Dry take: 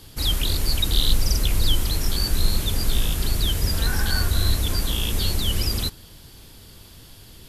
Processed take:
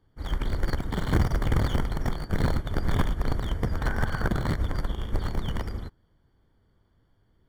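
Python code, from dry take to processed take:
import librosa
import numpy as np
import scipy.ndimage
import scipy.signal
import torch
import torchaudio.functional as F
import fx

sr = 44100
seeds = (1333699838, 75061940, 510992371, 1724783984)

y = (np.mod(10.0 ** (14.0 / 20.0) * x + 1.0, 2.0) - 1.0) / 10.0 ** (14.0 / 20.0)
y = scipy.signal.savgol_filter(y, 41, 4, mode='constant')
y = fx.upward_expand(y, sr, threshold_db=-32.0, expansion=2.5)
y = y * 10.0 ** (1.5 / 20.0)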